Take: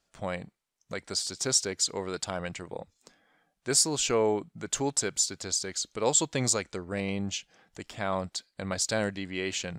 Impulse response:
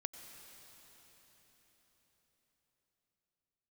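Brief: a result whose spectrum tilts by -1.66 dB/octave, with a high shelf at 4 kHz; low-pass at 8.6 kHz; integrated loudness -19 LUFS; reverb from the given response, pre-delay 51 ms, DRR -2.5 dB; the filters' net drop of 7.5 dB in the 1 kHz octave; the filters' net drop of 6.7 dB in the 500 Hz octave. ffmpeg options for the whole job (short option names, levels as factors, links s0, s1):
-filter_complex "[0:a]lowpass=8600,equalizer=f=500:t=o:g=-6.5,equalizer=f=1000:t=o:g=-8,highshelf=f=4000:g=5.5,asplit=2[s0][s1];[1:a]atrim=start_sample=2205,adelay=51[s2];[s1][s2]afir=irnorm=-1:irlink=0,volume=1.68[s3];[s0][s3]amix=inputs=2:normalize=0,volume=1.68"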